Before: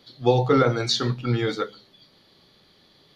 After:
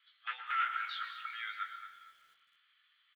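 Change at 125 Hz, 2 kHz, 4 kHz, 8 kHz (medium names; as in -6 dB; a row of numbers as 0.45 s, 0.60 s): under -40 dB, -5.0 dB, -16.5 dB, under -30 dB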